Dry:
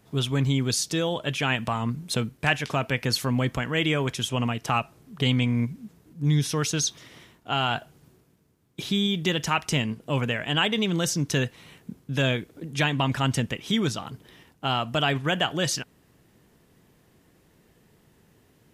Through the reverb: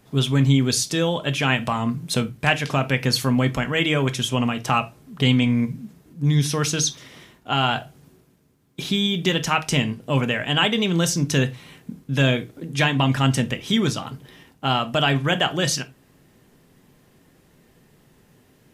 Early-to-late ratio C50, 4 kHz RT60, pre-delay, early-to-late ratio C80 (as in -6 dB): 20.5 dB, n/a, 4 ms, 29.5 dB